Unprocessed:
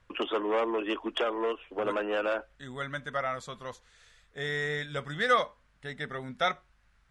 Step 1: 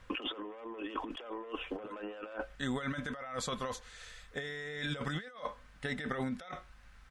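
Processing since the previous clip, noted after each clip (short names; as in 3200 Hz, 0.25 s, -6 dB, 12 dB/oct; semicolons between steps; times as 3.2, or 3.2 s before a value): comb 3.9 ms, depth 30%; negative-ratio compressor -41 dBFS, ratio -1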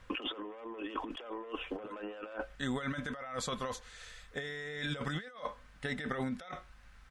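nothing audible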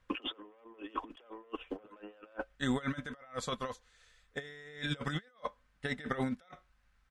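upward expander 2.5:1, over -45 dBFS; gain +5 dB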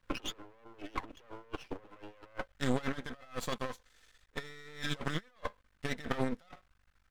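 half-wave rectifier; gain +4 dB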